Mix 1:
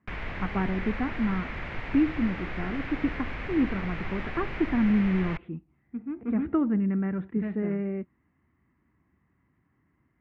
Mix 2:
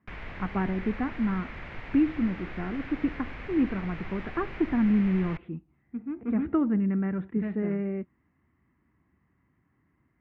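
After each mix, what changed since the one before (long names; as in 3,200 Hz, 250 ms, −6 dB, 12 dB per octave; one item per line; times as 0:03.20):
background −5.0 dB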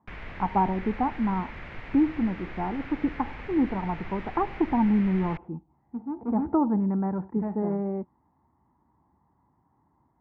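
speech: add low-pass with resonance 880 Hz, resonance Q 8.5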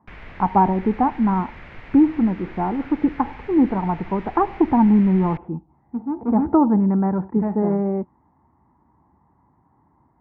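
speech +7.5 dB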